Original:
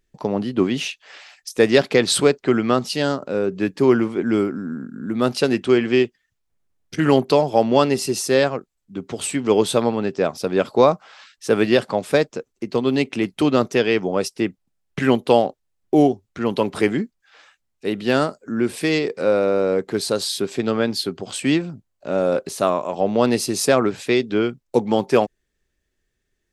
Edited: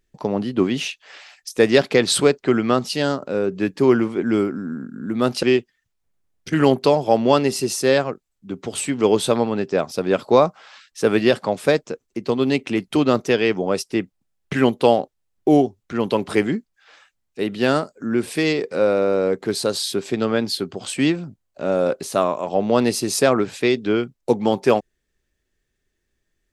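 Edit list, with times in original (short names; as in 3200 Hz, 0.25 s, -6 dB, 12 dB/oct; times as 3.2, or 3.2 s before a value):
5.43–5.89 cut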